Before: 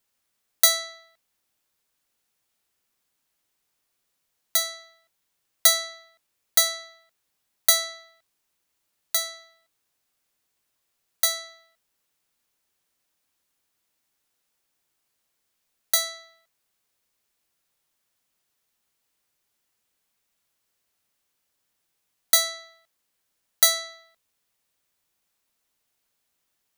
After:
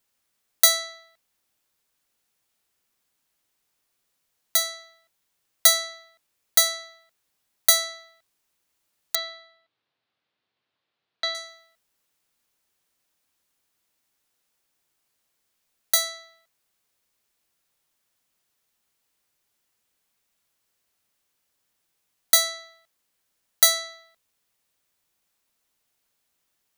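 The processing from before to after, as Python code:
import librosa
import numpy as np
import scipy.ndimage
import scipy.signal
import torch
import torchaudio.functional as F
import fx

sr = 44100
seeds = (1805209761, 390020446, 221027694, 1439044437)

y = fx.ellip_bandpass(x, sr, low_hz=100.0, high_hz=3900.0, order=3, stop_db=50, at=(9.15, 11.35))
y = y * 10.0 ** (1.0 / 20.0)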